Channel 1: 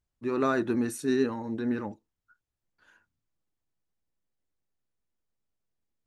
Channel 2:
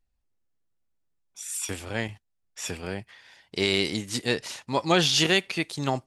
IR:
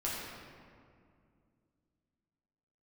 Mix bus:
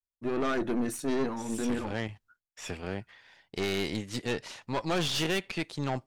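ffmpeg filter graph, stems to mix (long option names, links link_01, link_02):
-filter_complex "[0:a]volume=3dB[link_01];[1:a]aemphasis=mode=reproduction:type=50kf,volume=0dB[link_02];[link_01][link_02]amix=inputs=2:normalize=0,aeval=exprs='(tanh(17.8*val(0)+0.55)-tanh(0.55))/17.8':channel_layout=same,agate=range=-33dB:threshold=-59dB:ratio=3:detection=peak"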